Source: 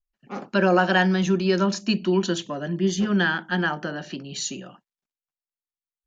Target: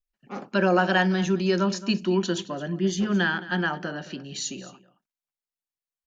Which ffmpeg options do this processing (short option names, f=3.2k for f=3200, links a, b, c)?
-af "aecho=1:1:218:0.133,volume=-2dB"